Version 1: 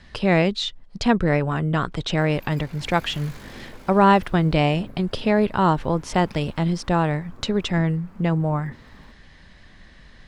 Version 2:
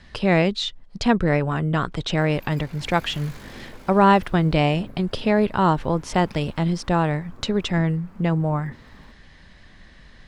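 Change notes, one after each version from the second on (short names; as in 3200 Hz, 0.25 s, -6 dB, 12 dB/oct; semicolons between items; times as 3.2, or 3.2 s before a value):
none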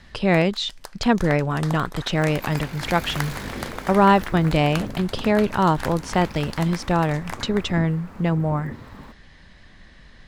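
first sound: unmuted; second sound +8.5 dB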